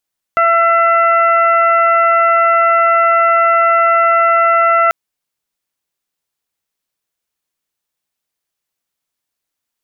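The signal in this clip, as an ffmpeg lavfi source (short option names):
-f lavfi -i "aevalsrc='0.2*sin(2*PI*672*t)+0.335*sin(2*PI*1344*t)+0.106*sin(2*PI*2016*t)+0.0398*sin(2*PI*2688*t)':d=4.54:s=44100"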